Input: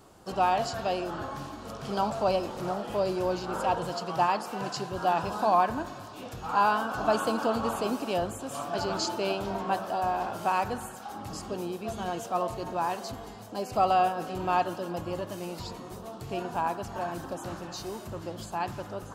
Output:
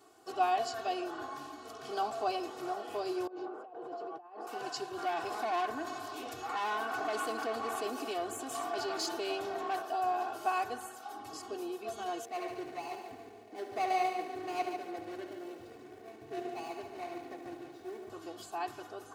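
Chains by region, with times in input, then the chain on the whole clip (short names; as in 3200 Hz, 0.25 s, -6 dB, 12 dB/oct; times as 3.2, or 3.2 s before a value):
3.27–4.47 negative-ratio compressor -36 dBFS + band-pass 460 Hz, Q 1.1
4.98–9.82 tube stage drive 25 dB, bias 0.55 + fast leveller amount 50%
12.25–18.1 median filter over 41 samples + multi-head echo 72 ms, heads first and second, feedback 41%, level -9 dB
whole clip: Bessel high-pass 270 Hz, order 2; notch 980 Hz, Q 21; comb 2.7 ms, depth 93%; gain -7.5 dB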